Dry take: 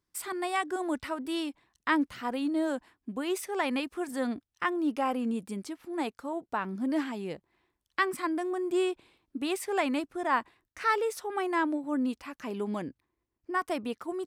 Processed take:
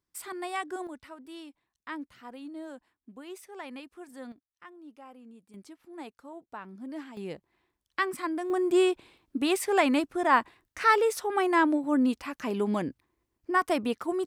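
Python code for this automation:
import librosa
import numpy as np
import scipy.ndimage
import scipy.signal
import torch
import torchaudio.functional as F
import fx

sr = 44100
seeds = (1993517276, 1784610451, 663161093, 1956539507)

y = fx.gain(x, sr, db=fx.steps((0.0, -3.5), (0.87, -12.0), (4.32, -20.0), (5.54, -10.0), (7.17, -1.0), (8.5, 5.0)))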